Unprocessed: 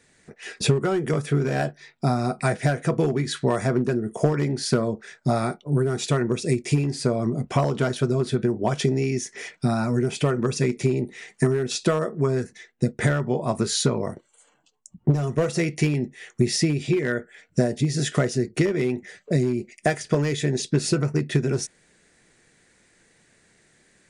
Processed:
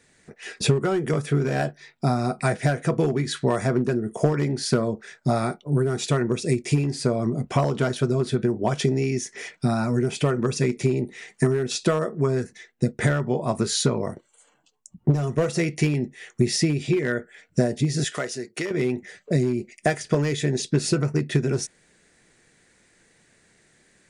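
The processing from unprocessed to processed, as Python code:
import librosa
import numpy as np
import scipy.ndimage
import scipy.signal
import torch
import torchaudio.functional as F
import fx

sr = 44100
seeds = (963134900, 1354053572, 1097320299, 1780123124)

y = fx.highpass(x, sr, hz=830.0, slope=6, at=(18.04, 18.71))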